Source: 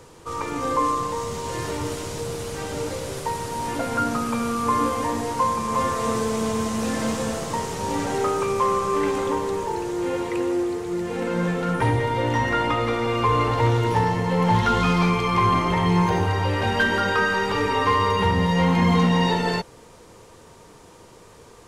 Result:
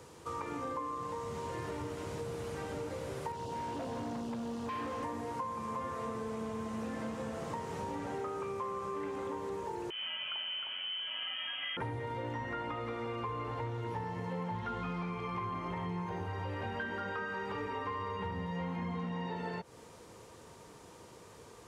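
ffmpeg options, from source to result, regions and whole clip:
-filter_complex "[0:a]asettb=1/sr,asplit=3[s0][s1][s2];[s0]atrim=end=3.324[s3];[s1]atrim=start=3.32:end=5.03,asetpts=PTS-STARTPTS,afade=t=in:d=0.004:c=qsin,afade=t=out:st=1.706:d=0.004:c=qsin,asuperstop=centerf=1700:order=20:qfactor=1.1,acrossover=split=7000[s4][s5];[s5]acompressor=threshold=0.00141:ratio=4:attack=1:release=60[s6];[s4][s6]amix=inputs=2:normalize=0,asoftclip=type=hard:threshold=0.0473[s7];[s2]atrim=start=5.026[s8];[s3][s7]acrossfade=d=0.004:c1=hsin:c2=qsin[s9];[s9][s8]acrossfade=d=0.004:c1=qsin:c2=hsin,asettb=1/sr,asplit=3[s10][s11][s12];[s10]atrim=end=9.904[s13];[s11]atrim=start=9.9:end=11.77,asetpts=PTS-STARTPTS,afade=t=in:d=0.004:c=qsin,afade=t=out:st=1.866:d=0.004:c=qsin,aecho=1:1:309:0.562,atrim=end_sample=82467,lowpass=f=2900:t=q:w=0.5098,lowpass=f=2900:t=q:w=0.6013,lowpass=f=2900:t=q:w=0.9,lowpass=f=2900:t=q:w=2.563,afreqshift=-3400[s14];[s12]atrim=start=11.766[s15];[s13][s14]acrossfade=d=0.004:c1=hsin:c2=qsin[s16];[s16][s15]acrossfade=d=0.004:c1=qsin:c2=hsin,acrossover=split=2700[s17][s18];[s18]acompressor=threshold=0.00501:ratio=4:attack=1:release=60[s19];[s17][s19]amix=inputs=2:normalize=0,highpass=57,acompressor=threshold=0.0316:ratio=6,volume=0.501"

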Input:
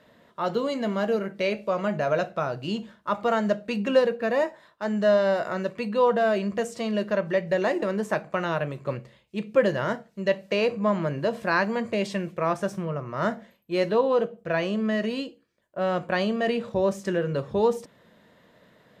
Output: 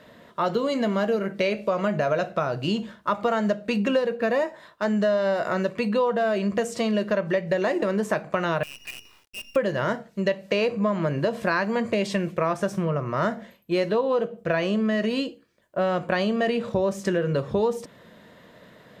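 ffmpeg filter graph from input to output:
-filter_complex "[0:a]asettb=1/sr,asplit=3[s0][s1][s2];[s0]atrim=end=8.634[s3];[s1]atrim=start=8.63:end=9.56,asetpts=PTS-STARTPTS,afade=t=in:d=0.004:c=qsin,afade=t=out:st=0.926:d=0.004:c=qsin,lowpass=f=2600:t=q:w=0.5098,lowpass=f=2600:t=q:w=0.6013,lowpass=f=2600:t=q:w=0.9,lowpass=f=2600:t=q:w=2.563,afreqshift=-3000,acompressor=threshold=0.00178:ratio=2:attack=3.2:release=140:knee=1:detection=peak,acrusher=bits=8:dc=4:mix=0:aa=0.000001[s4];[s2]atrim=start=9.556[s5];[s3][s4]acrossfade=d=0.004:c1=hsin:c2=qsin[s6];[s6][s5]acrossfade=d=0.004:c1=qsin:c2=hsin,bandreject=f=840:w=23,acompressor=threshold=0.0398:ratio=4,volume=2.24"

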